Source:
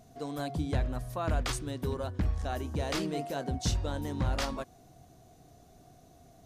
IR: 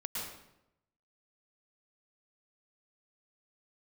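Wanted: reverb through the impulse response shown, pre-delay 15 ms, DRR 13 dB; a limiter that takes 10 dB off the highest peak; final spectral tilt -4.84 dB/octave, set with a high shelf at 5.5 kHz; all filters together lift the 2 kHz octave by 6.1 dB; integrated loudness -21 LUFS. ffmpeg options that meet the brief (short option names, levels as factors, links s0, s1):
-filter_complex "[0:a]equalizer=f=2000:t=o:g=7,highshelf=f=5500:g=7,alimiter=level_in=1.26:limit=0.0631:level=0:latency=1,volume=0.794,asplit=2[s0][s1];[1:a]atrim=start_sample=2205,adelay=15[s2];[s1][s2]afir=irnorm=-1:irlink=0,volume=0.178[s3];[s0][s3]amix=inputs=2:normalize=0,volume=5.62"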